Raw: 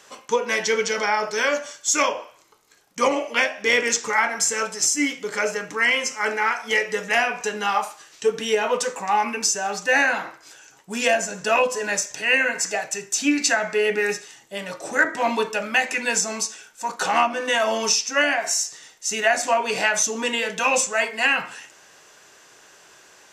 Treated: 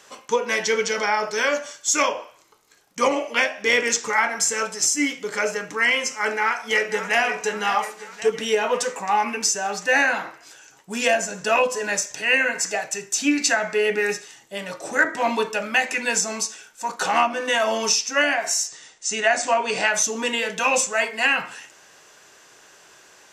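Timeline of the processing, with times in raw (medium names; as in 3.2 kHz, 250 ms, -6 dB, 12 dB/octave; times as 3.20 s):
6.20–7.21 s: echo throw 540 ms, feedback 55%, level -11 dB
18.68–19.88 s: steep low-pass 9.2 kHz 96 dB/octave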